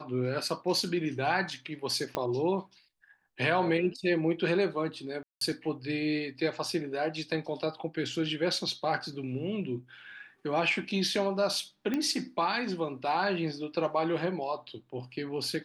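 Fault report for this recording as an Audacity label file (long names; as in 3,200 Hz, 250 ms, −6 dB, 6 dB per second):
2.150000	2.150000	click −16 dBFS
5.230000	5.410000	drop-out 183 ms
11.940000	11.940000	click −18 dBFS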